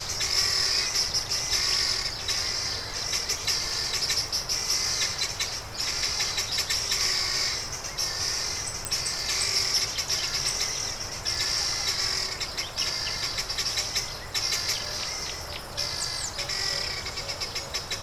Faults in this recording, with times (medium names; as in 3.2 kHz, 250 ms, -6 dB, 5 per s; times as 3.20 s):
crackle 31 per s -35 dBFS
8.85 s: pop -11 dBFS